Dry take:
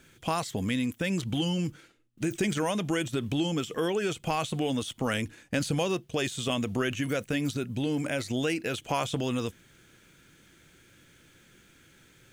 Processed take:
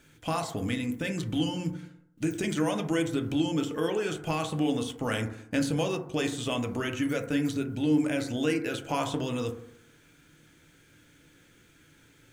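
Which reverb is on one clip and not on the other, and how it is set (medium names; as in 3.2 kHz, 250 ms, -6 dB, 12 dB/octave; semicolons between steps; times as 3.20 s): FDN reverb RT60 0.72 s, low-frequency decay 1×, high-frequency decay 0.25×, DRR 3.5 dB; trim -2.5 dB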